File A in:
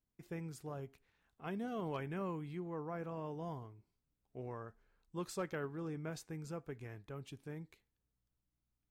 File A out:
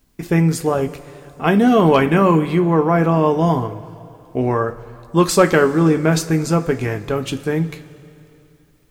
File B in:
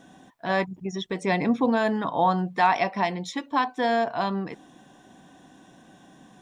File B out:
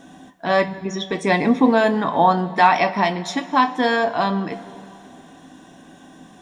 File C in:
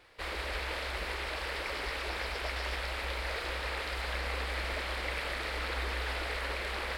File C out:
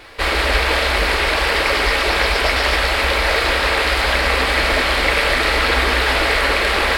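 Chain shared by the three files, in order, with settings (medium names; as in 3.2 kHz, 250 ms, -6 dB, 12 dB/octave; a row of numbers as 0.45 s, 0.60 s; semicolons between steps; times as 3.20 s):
two-slope reverb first 0.22 s, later 3 s, from -19 dB, DRR 7 dB; peak normalisation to -2 dBFS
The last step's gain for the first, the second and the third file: +27.0 dB, +6.0 dB, +19.0 dB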